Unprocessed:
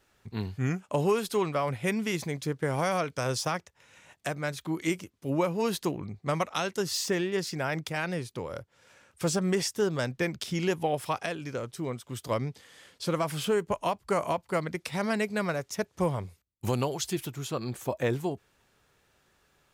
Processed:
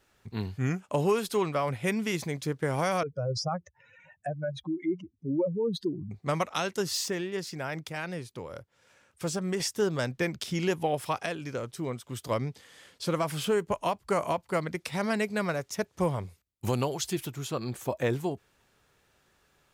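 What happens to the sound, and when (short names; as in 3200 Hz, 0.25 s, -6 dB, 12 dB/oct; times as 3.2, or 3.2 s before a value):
3.03–6.11 spectral contrast raised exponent 3.1
7.08–9.6 gain -4 dB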